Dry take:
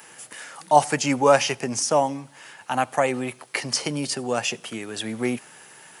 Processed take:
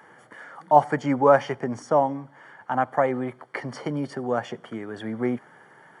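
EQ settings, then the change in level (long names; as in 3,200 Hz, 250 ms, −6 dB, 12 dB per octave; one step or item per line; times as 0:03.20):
Savitzky-Golay smoothing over 41 samples
0.0 dB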